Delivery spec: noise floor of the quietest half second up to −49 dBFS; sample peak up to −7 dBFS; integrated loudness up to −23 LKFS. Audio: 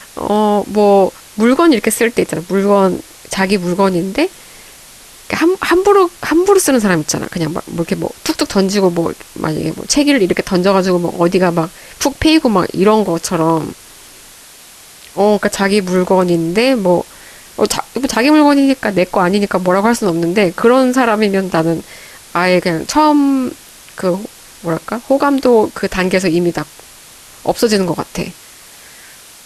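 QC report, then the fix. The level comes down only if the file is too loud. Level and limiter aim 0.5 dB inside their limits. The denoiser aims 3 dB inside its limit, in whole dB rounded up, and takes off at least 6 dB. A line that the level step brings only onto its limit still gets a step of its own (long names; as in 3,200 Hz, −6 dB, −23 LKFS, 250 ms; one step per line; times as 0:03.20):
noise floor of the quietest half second −39 dBFS: out of spec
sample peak −1.0 dBFS: out of spec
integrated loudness −14.0 LKFS: out of spec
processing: broadband denoise 6 dB, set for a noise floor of −39 dBFS
level −9.5 dB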